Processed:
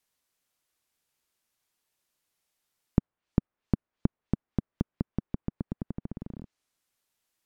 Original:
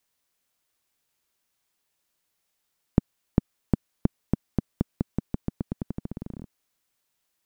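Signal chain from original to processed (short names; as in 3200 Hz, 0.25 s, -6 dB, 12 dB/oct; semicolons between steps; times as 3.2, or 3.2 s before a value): treble ducked by the level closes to 1400 Hz, closed at -30 dBFS; gain -2.5 dB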